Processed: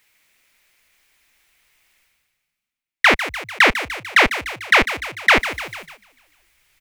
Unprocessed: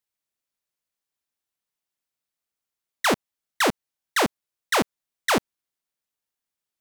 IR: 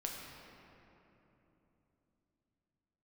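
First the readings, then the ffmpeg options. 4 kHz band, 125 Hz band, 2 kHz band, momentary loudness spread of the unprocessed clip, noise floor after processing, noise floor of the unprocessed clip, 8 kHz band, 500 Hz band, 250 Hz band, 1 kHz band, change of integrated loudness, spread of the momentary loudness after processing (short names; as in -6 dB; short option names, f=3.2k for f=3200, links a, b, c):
+7.5 dB, +4.5 dB, +13.0 dB, 6 LU, under -85 dBFS, under -85 dBFS, -1.0 dB, +3.5 dB, +0.5 dB, +6.0 dB, +8.5 dB, 11 LU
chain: -filter_complex "[0:a]equalizer=f=2.2k:t=o:w=0.89:g=13.5,areverse,acompressor=mode=upward:threshold=-29dB:ratio=2.5,areverse,asubboost=boost=11:cutoff=57,asplit=2[a][b];[b]asplit=7[c][d][e][f][g][h][i];[c]adelay=148,afreqshift=48,volume=-12.5dB[j];[d]adelay=296,afreqshift=96,volume=-17.1dB[k];[e]adelay=444,afreqshift=144,volume=-21.7dB[l];[f]adelay=592,afreqshift=192,volume=-26.2dB[m];[g]adelay=740,afreqshift=240,volume=-30.8dB[n];[h]adelay=888,afreqshift=288,volume=-35.4dB[o];[i]adelay=1036,afreqshift=336,volume=-40dB[p];[j][k][l][m][n][o][p]amix=inputs=7:normalize=0[q];[a][q]amix=inputs=2:normalize=0,agate=range=-12dB:threshold=-39dB:ratio=16:detection=peak,acrossover=split=5200[r][s];[s]acompressor=threshold=-34dB:ratio=4:attack=1:release=60[t];[r][t]amix=inputs=2:normalize=0,volume=3.5dB"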